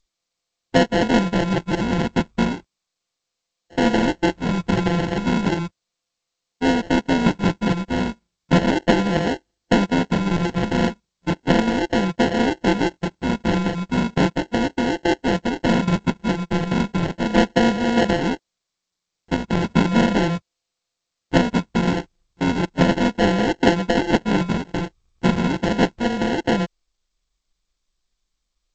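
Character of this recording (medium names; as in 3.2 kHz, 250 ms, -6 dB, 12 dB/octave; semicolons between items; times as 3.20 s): a buzz of ramps at a fixed pitch in blocks of 64 samples; phasing stages 8, 0.35 Hz, lowest notch 550–1300 Hz; aliases and images of a low sample rate 1.2 kHz, jitter 0%; G.722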